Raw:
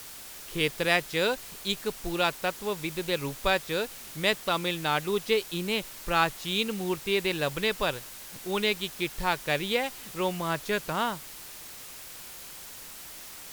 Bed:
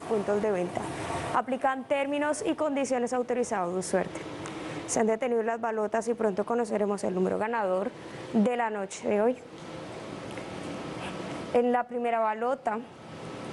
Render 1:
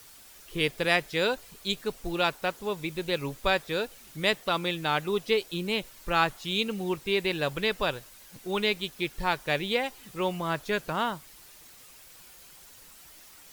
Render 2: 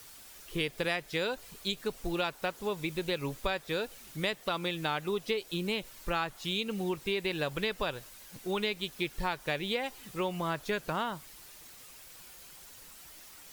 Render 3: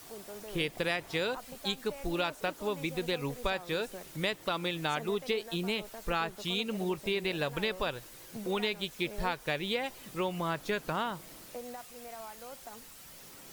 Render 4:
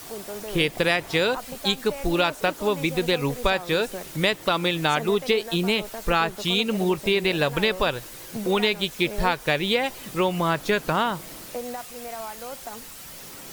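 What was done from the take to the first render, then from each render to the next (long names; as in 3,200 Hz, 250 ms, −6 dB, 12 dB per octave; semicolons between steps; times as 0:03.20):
broadband denoise 9 dB, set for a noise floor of −44 dBFS
downward compressor, threshold −28 dBFS, peak gain reduction 10 dB
mix in bed −19 dB
level +10 dB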